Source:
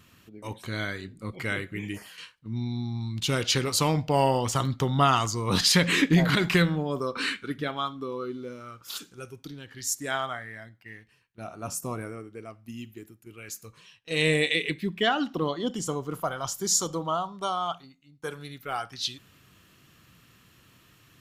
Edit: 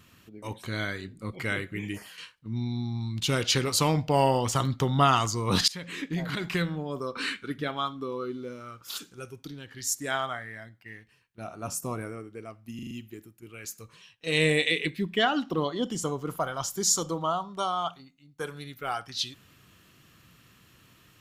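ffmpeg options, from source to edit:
ffmpeg -i in.wav -filter_complex "[0:a]asplit=6[link_01][link_02][link_03][link_04][link_05][link_06];[link_01]atrim=end=5.68,asetpts=PTS-STARTPTS,afade=type=out:start_time=5.676:duration=0.004:curve=hsin:silence=0.0841395[link_07];[link_02]atrim=start=5.68:end=12.792,asetpts=PTS-STARTPTS,afade=type=in:duration=2.15:silence=0.0841395[link_08];[link_03]atrim=start=12.748:end=12.792[link_09];[link_04]atrim=start=12.748:end=12.792[link_10];[link_05]atrim=start=12.748:end=12.792[link_11];[link_06]atrim=start=12.748[link_12];[link_07][link_08]concat=n=2:v=0:a=1[link_13];[link_13][link_09]acrossfade=duration=0.004:curve1=hsin:curve2=hsin[link_14];[link_14][link_10]acrossfade=duration=0.004:curve1=hsin:curve2=hsin[link_15];[link_15][link_11]acrossfade=duration=0.004:curve1=hsin:curve2=hsin[link_16];[link_16][link_12]acrossfade=duration=0.004:curve1=hsin:curve2=hsin" out.wav

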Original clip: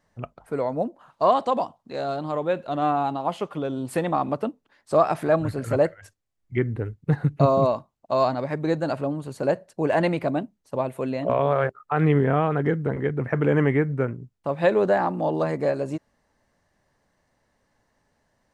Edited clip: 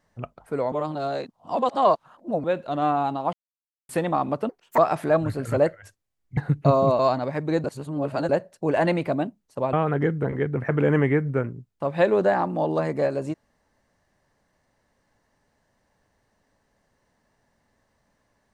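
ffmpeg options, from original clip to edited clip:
ffmpeg -i in.wav -filter_complex "[0:a]asplit=12[link_01][link_02][link_03][link_04][link_05][link_06][link_07][link_08][link_09][link_10][link_11][link_12];[link_01]atrim=end=0.722[link_13];[link_02]atrim=start=0.718:end=2.442,asetpts=PTS-STARTPTS,areverse[link_14];[link_03]atrim=start=2.438:end=3.33,asetpts=PTS-STARTPTS,afade=type=out:start_time=0.888:duration=0.004:curve=hsin[link_15];[link_04]atrim=start=3.33:end=3.89,asetpts=PTS-STARTPTS,volume=0[link_16];[link_05]atrim=start=3.89:end=4.494,asetpts=PTS-STARTPTS,afade=type=in:duration=0.004:curve=hsin[link_17];[link_06]atrim=start=4.49:end=4.97,asetpts=PTS-STARTPTS,asetrate=72765,aresample=44100,atrim=end_sample=12829,asetpts=PTS-STARTPTS[link_18];[link_07]atrim=start=4.966:end=6.562[link_19];[link_08]atrim=start=7.118:end=7.742[link_20];[link_09]atrim=start=8.148:end=8.802[link_21];[link_10]atrim=start=8.798:end=9.452,asetpts=PTS-STARTPTS,areverse[link_22];[link_11]atrim=start=9.448:end=10.892[link_23];[link_12]atrim=start=12.368[link_24];[link_13][link_14]acrossfade=duration=0.004:curve1=hsin:curve2=hsin[link_25];[link_15][link_16][link_17]concat=n=3:v=0:a=1[link_26];[link_25][link_26]acrossfade=duration=0.004:curve1=hsin:curve2=hsin[link_27];[link_27][link_18]acrossfade=duration=0.004:curve1=hsin:curve2=hsin[link_28];[link_28][link_19]acrossfade=duration=0.004:curve1=hsin:curve2=hsin[link_29];[link_29][link_20]acrossfade=duration=0.004:curve1=hsin:curve2=hsin[link_30];[link_30][link_21]acrossfade=duration=0.004:curve1=hsin:curve2=hsin[link_31];[link_31][link_22]acrossfade=duration=0.004:curve1=hsin:curve2=hsin[link_32];[link_32][link_23]acrossfade=duration=0.004:curve1=hsin:curve2=hsin[link_33];[link_33][link_24]acrossfade=duration=0.004:curve1=hsin:curve2=hsin" out.wav

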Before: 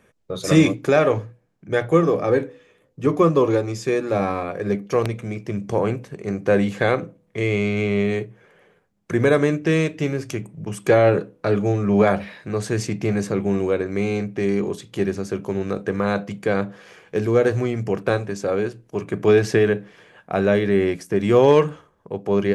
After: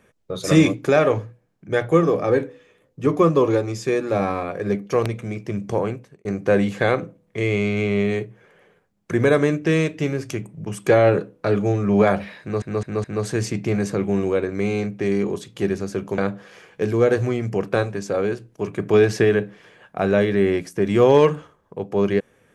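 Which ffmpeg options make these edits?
ffmpeg -i in.wav -filter_complex "[0:a]asplit=6[link_01][link_02][link_03][link_04][link_05][link_06];[link_01]atrim=end=6.25,asetpts=PTS-STARTPTS,afade=type=out:start_time=5.71:duration=0.54[link_07];[link_02]atrim=start=6.25:end=12.622,asetpts=PTS-STARTPTS,afade=type=in:duration=0.004:curve=hsin[link_08];[link_03]atrim=start=12.408:end=12.622[link_09];[link_04]atrim=start=12.408:end=12.622[link_10];[link_05]atrim=start=12.408:end=15.552[link_11];[link_06]atrim=start=16.518[link_12];[link_07][link_08]concat=n=2:v=0:a=1[link_13];[link_13][link_09]acrossfade=duration=0.004:curve1=hsin:curve2=hsin[link_14];[link_14][link_10]acrossfade=duration=0.004:curve1=hsin:curve2=hsin[link_15];[link_15][link_11]acrossfade=duration=0.004:curve1=hsin:curve2=hsin[link_16];[link_16][link_12]acrossfade=duration=0.004:curve1=hsin:curve2=hsin" out.wav

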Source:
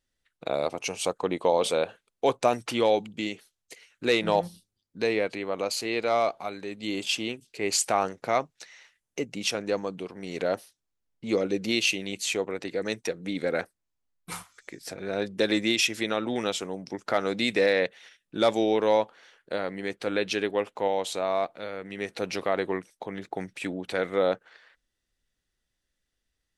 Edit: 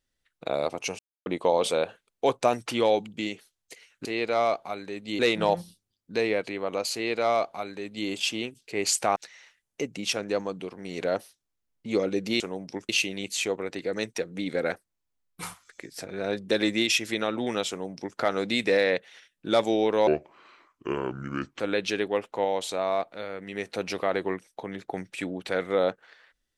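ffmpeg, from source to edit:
ffmpeg -i in.wav -filter_complex "[0:a]asplit=10[link_01][link_02][link_03][link_04][link_05][link_06][link_07][link_08][link_09][link_10];[link_01]atrim=end=0.99,asetpts=PTS-STARTPTS,afade=type=out:start_time=0.986:duration=0.004:curve=hsin[link_11];[link_02]atrim=start=0.99:end=1.26,asetpts=PTS-STARTPTS,volume=0[link_12];[link_03]atrim=start=1.26:end=4.052,asetpts=PTS-STARTPTS,afade=type=in:duration=0.004:curve=hsin[link_13];[link_04]atrim=start=5.798:end=6.942[link_14];[link_05]atrim=start=4.048:end=8.022[link_15];[link_06]atrim=start=8.538:end=11.782[link_16];[link_07]atrim=start=16.578:end=17.072[link_17];[link_08]atrim=start=11.778:end=18.964[link_18];[link_09]atrim=start=18.96:end=20.03,asetpts=PTS-STARTPTS,asetrate=30870,aresample=44100[link_19];[link_10]atrim=start=20.026[link_20];[link_11][link_12][link_13]concat=n=3:v=0:a=1[link_21];[link_21][link_14]acrossfade=duration=0.004:curve1=hsin:curve2=hsin[link_22];[link_22][link_15]acrossfade=duration=0.004:curve1=hsin:curve2=hsin[link_23];[link_23][link_16]acrossfade=duration=0.004:curve1=hsin:curve2=hsin[link_24];[link_24][link_17]acrossfade=duration=0.004:curve1=hsin:curve2=hsin[link_25];[link_25][link_18]acrossfade=duration=0.004:curve1=hsin:curve2=hsin[link_26];[link_26][link_19]acrossfade=duration=0.004:curve1=hsin:curve2=hsin[link_27];[link_27][link_20]acrossfade=duration=0.004:curve1=hsin:curve2=hsin" out.wav

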